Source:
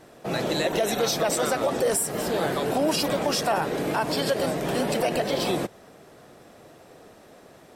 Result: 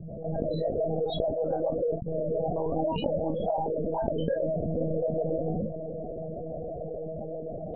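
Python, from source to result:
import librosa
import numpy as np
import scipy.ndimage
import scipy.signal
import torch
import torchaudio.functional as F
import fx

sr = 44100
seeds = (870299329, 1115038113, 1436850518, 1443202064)

p1 = fx.fade_in_head(x, sr, length_s=0.56)
p2 = fx.low_shelf(p1, sr, hz=76.0, db=4.5)
p3 = np.clip(p2, -10.0 ** (-26.0 / 20.0), 10.0 ** (-26.0 / 20.0))
p4 = p2 + (p3 * 10.0 ** (-6.5 / 20.0))
p5 = fx.spec_topn(p4, sr, count=8)
p6 = fx.dmg_noise_band(p5, sr, seeds[0], low_hz=76.0, high_hz=180.0, level_db=-61.0)
p7 = fx.spec_paint(p6, sr, seeds[1], shape='rise', start_s=2.51, length_s=0.25, low_hz=610.0, high_hz=1300.0, level_db=-40.0)
p8 = fx.fixed_phaser(p7, sr, hz=340.0, stages=6)
p9 = fx.doubler(p8, sr, ms=36.0, db=-14)
p10 = fx.lpc_monotone(p9, sr, seeds[2], pitch_hz=160.0, order=16)
p11 = fx.env_flatten(p10, sr, amount_pct=70)
y = p11 * 10.0 ** (-6.0 / 20.0)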